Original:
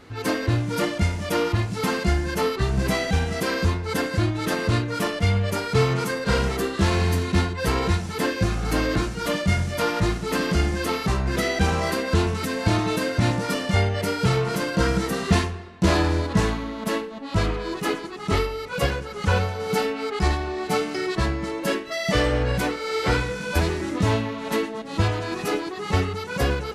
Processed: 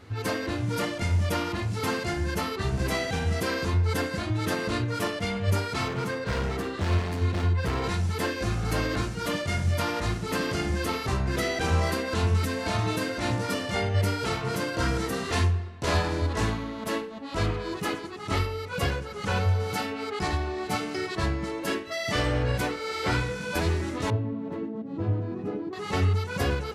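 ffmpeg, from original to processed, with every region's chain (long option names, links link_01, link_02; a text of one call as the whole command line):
ffmpeg -i in.wav -filter_complex "[0:a]asettb=1/sr,asplit=3[link_01][link_02][link_03];[link_01]atrim=end=5.884[link_04];[link_02]atrim=start=5.88:end=7.84,asetpts=PTS-STARTPTS,afade=type=in:duration=0.004:curve=qsin,afade=type=out:start_time=1.956:duration=0.004:curve=qsin,lowpass=frequency=3600:poles=1,volume=21.5dB,asoftclip=hard,volume=-21.5dB[link_05];[link_03]atrim=start=7.836[link_06];[link_04][link_05]acrossfade=duration=0.004:curve1=hsin:curve2=qsin[link_07];[link_07][link_06]acrossfade=duration=0.004:curve1=qsin:curve2=hsin,asettb=1/sr,asplit=3[link_08][link_09][link_10];[link_08]atrim=end=24.104[link_11];[link_09]atrim=start=24.1:end=25.73,asetpts=PTS-STARTPTS,afade=type=in:duration=0.004:curve=qsin,afade=type=out:start_time=1.626:duration=0.004:curve=qsin,acontrast=61,bandpass=frequency=220:width_type=q:width=1.6[link_12];[link_10]atrim=start=25.726[link_13];[link_11][link_12]acrossfade=duration=0.004:curve1=hsin:curve2=qsin[link_14];[link_14][link_13]acrossfade=duration=0.004:curve1=qsin:curve2=hsin,lowshelf=frequency=73:gain=-7,afftfilt=real='re*lt(hypot(re,im),0.501)':imag='im*lt(hypot(re,im),0.501)':win_size=1024:overlap=0.75,equalizer=frequency=92:width=2.3:gain=15,volume=-3.5dB" out.wav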